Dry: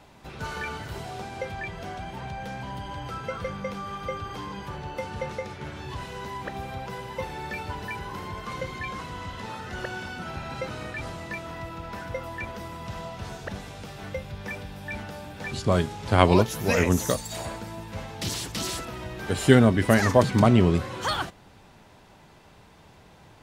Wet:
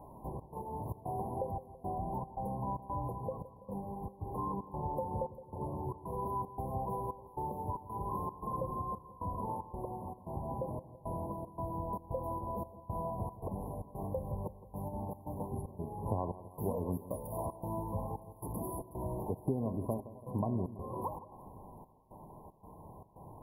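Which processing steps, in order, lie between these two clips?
parametric band 1,500 Hz +9 dB 0.7 octaves
hum removal 71.82 Hz, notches 30
downward compressor 6 to 1, threshold −33 dBFS, peak gain reduction 21.5 dB
gate pattern "xxx.xxx.xxxx.." 114 BPM −24 dB
linear-phase brick-wall band-stop 1,100–10,000 Hz
on a send: echo with a time of its own for lows and highs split 1,200 Hz, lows 166 ms, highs 369 ms, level −15 dB
on the sum: level +1.5 dB

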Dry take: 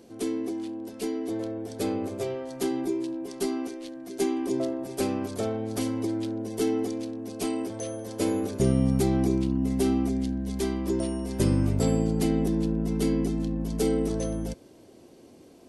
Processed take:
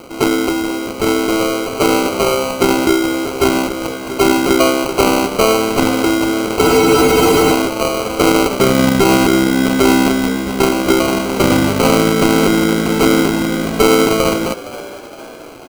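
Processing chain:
running median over 15 samples
high-pass filter 260 Hz 6 dB per octave
spectral tilt +3.5 dB per octave
decimation without filtering 25×
echo with shifted repeats 464 ms, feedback 50%, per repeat +69 Hz, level −17 dB
frozen spectrum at 0:06.64, 0.87 s
boost into a limiter +23.5 dB
level −1 dB

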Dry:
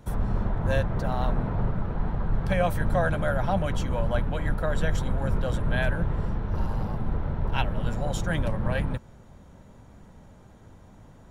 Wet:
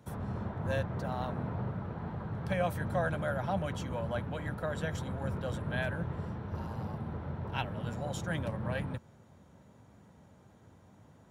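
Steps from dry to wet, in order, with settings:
high-pass filter 79 Hz 24 dB per octave
level −6.5 dB

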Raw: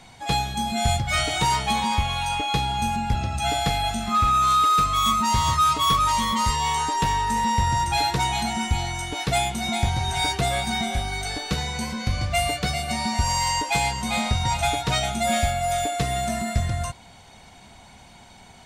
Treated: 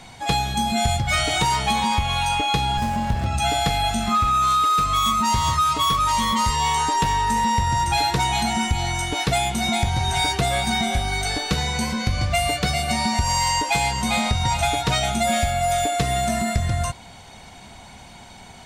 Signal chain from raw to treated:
downward compressor, threshold −22 dBFS, peak gain reduction 6.5 dB
0:02.77–0:03.26: windowed peak hold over 17 samples
level +5 dB

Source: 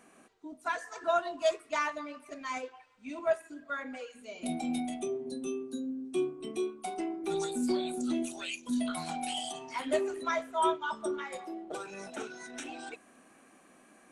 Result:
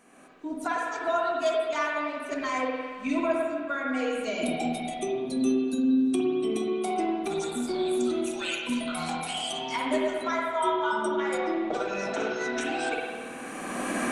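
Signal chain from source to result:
camcorder AGC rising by 20 dB per second
0:11.38–0:12.61: low-pass filter 6,500 Hz 24 dB per octave
spring reverb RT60 1.7 s, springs 50/54 ms, chirp 45 ms, DRR −2 dB

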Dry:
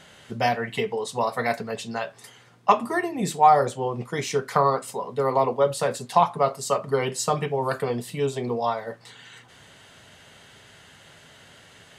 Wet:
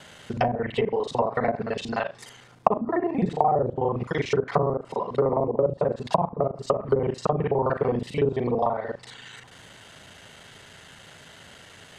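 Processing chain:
reversed piece by piece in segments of 37 ms
treble cut that deepens with the level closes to 460 Hz, closed at −19 dBFS
level +3 dB

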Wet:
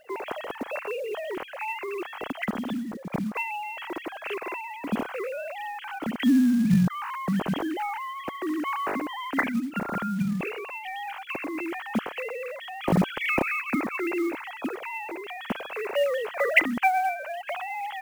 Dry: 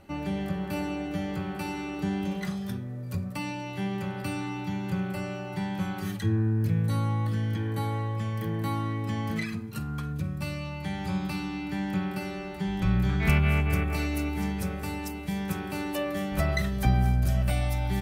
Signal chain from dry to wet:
three sine waves on the formant tracks
log-companded quantiser 6 bits

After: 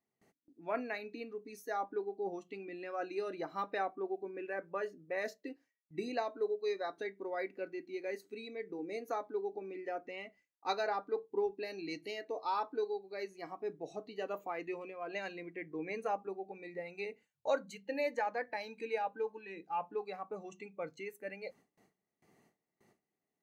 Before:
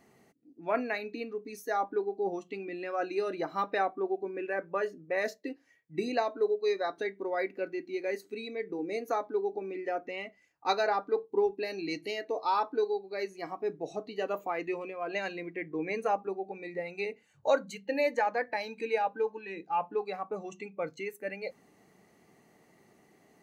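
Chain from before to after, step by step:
noise gate with hold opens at −52 dBFS
level −6.5 dB

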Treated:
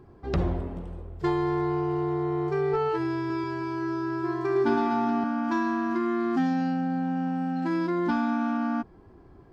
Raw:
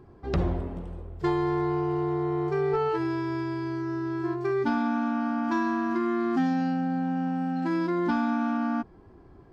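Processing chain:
0:03.19–0:05.24: reverse bouncing-ball delay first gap 110 ms, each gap 1.25×, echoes 5

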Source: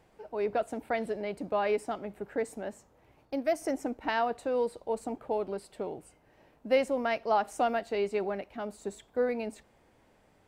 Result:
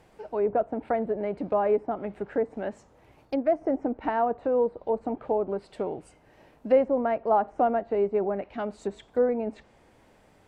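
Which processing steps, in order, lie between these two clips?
treble cut that deepens with the level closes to 1,000 Hz, closed at −29 dBFS
level +5.5 dB

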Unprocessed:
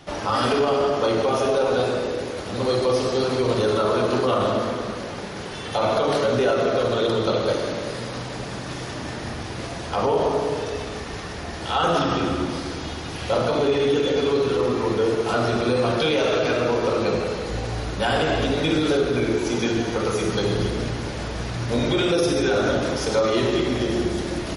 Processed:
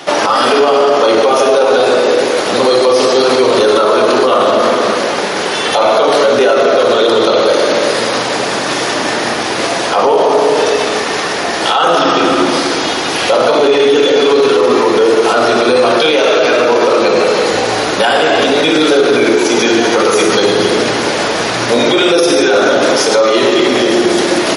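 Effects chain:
high-pass filter 350 Hz 12 dB per octave
boost into a limiter +20 dB
level −1 dB

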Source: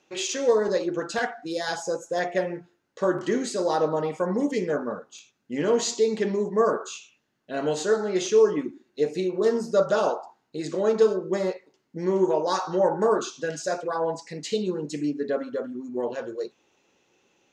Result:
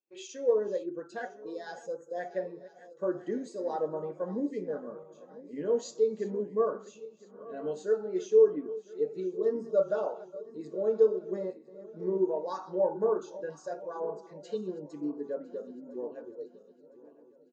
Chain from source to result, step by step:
feedback delay that plays each chunk backwards 504 ms, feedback 74%, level −12 dB
far-end echo of a speakerphone 250 ms, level −28 dB
every bin expanded away from the loudest bin 1.5 to 1
level −4 dB

